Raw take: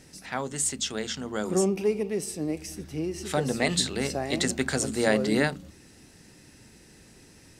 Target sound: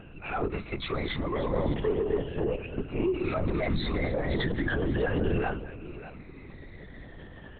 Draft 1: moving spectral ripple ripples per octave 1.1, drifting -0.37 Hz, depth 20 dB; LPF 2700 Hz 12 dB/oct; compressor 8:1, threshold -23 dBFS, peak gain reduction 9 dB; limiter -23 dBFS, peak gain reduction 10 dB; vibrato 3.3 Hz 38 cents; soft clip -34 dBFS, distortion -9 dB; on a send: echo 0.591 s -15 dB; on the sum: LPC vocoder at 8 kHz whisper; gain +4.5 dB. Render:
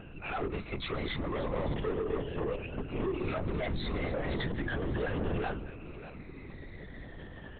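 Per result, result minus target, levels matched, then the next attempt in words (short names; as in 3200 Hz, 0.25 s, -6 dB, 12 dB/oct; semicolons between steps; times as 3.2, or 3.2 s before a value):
compressor: peak gain reduction +9 dB; soft clip: distortion +12 dB
moving spectral ripple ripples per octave 1.1, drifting -0.37 Hz, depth 20 dB; LPF 2700 Hz 12 dB/oct; limiter -23 dBFS, peak gain reduction 16 dB; vibrato 3.3 Hz 38 cents; soft clip -34 dBFS, distortion -9 dB; on a send: echo 0.591 s -15 dB; on the sum: LPC vocoder at 8 kHz whisper; gain +4.5 dB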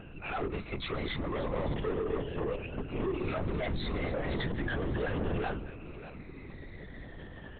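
soft clip: distortion +13 dB
moving spectral ripple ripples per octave 1.1, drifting -0.37 Hz, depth 20 dB; LPF 2700 Hz 12 dB/oct; limiter -23 dBFS, peak gain reduction 16 dB; vibrato 3.3 Hz 38 cents; soft clip -23.5 dBFS, distortion -21 dB; on a send: echo 0.591 s -15 dB; on the sum: LPC vocoder at 8 kHz whisper; gain +4.5 dB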